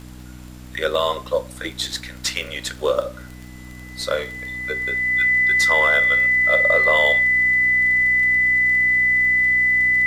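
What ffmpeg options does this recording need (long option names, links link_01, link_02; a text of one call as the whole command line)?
ffmpeg -i in.wav -af "adeclick=threshold=4,bandreject=frequency=62.1:width_type=h:width=4,bandreject=frequency=124.2:width_type=h:width=4,bandreject=frequency=186.3:width_type=h:width=4,bandreject=frequency=248.4:width_type=h:width=4,bandreject=frequency=310.5:width_type=h:width=4,bandreject=frequency=2000:width=30,agate=range=-21dB:threshold=-30dB" out.wav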